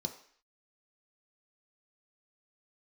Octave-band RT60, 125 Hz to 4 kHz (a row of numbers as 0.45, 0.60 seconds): 0.35, 0.50, 0.50, 0.55, 0.65, 0.60 seconds